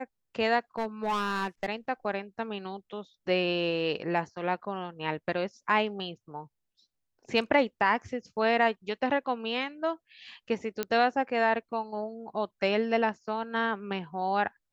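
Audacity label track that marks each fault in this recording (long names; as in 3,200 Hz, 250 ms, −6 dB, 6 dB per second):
0.780000	1.660000	clipping −25.5 dBFS
10.830000	10.830000	click −14 dBFS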